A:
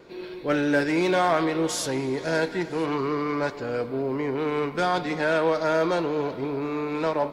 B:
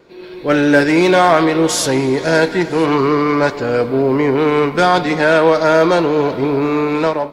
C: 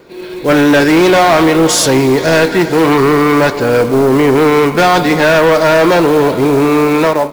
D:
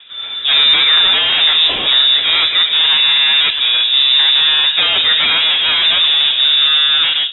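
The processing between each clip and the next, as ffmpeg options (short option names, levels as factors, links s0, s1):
-af "dynaudnorm=f=160:g=5:m=4.22,volume=1.12"
-filter_complex "[0:a]asplit=2[s0][s1];[s1]aeval=exprs='0.891*sin(PI/2*3.16*val(0)/0.891)':c=same,volume=0.266[s2];[s0][s2]amix=inputs=2:normalize=0,acrusher=bits=5:mode=log:mix=0:aa=0.000001"
-filter_complex "[0:a]acrossover=split=270|2100[s0][s1][s2];[s1]asoftclip=type=hard:threshold=0.168[s3];[s0][s3][s2]amix=inputs=3:normalize=0,lowpass=f=3300:t=q:w=0.5098,lowpass=f=3300:t=q:w=0.6013,lowpass=f=3300:t=q:w=0.9,lowpass=f=3300:t=q:w=2.563,afreqshift=-3900,volume=1.12"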